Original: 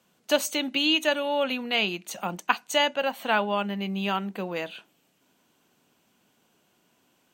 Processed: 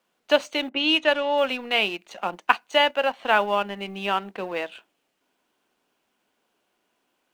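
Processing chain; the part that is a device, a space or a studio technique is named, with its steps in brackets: phone line with mismatched companding (BPF 320–3300 Hz; G.711 law mismatch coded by A); 0.69–1.38 low-pass opened by the level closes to 1000 Hz, open at -20 dBFS; gain +5 dB

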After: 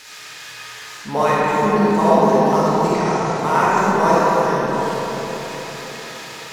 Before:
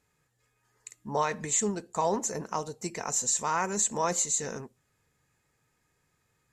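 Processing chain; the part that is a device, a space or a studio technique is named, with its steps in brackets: reverb removal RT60 0.52 s; budget class-D amplifier (switching dead time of 0.07 ms; switching spikes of -28 dBFS); 2.92–3.39 LPF 9600 Hz 24 dB/oct; air absorption 72 m; digital reverb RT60 4.8 s, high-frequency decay 0.4×, pre-delay 10 ms, DRR -9 dB; gain +7 dB

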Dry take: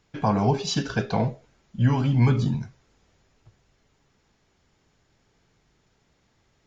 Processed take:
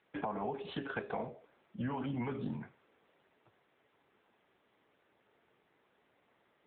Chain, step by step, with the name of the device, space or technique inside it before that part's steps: dynamic EQ 5700 Hz, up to +6 dB, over -57 dBFS, Q 2.3; voicemail (BPF 320–2700 Hz; compressor 10:1, threshold -33 dBFS, peak gain reduction 13.5 dB; AMR-NB 7.95 kbps 8000 Hz)

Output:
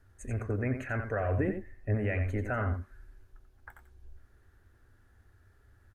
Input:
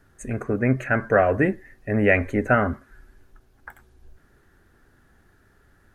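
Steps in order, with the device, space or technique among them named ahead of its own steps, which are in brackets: car stereo with a boomy subwoofer (resonant low shelf 120 Hz +6 dB, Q 3; limiter -14 dBFS, peak gain reduction 8.5 dB); 1.37–1.95 tilt shelf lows +4 dB; echo 88 ms -8 dB; gain -9 dB

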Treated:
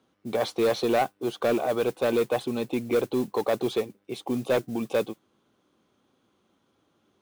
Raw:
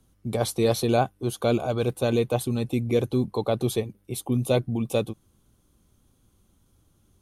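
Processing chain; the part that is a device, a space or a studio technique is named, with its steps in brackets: carbon microphone (BPF 310–3400 Hz; soft clip -21 dBFS, distortion -12 dB; modulation noise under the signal 23 dB); gain +4 dB

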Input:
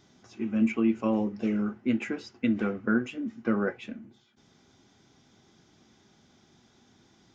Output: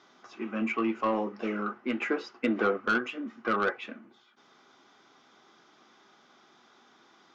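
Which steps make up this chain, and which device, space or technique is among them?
intercom (BPF 390–4600 Hz; bell 1200 Hz +9.5 dB 0.57 oct; soft clip -22.5 dBFS, distortion -15 dB); 1.99–2.77 dynamic EQ 440 Hz, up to +6 dB, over -46 dBFS, Q 0.84; gain +3.5 dB

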